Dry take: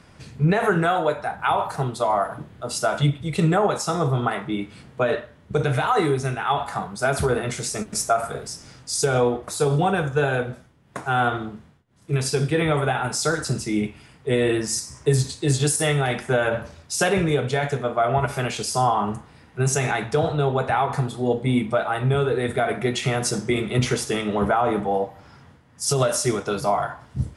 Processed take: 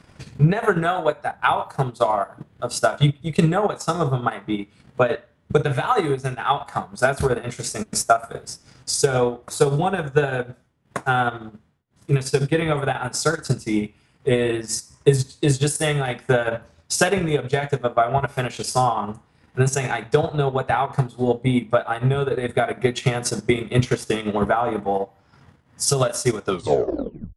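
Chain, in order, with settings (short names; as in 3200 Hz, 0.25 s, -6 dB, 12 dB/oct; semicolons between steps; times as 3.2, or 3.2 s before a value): tape stop at the end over 0.91 s; transient shaper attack +7 dB, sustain -10 dB; gain -1 dB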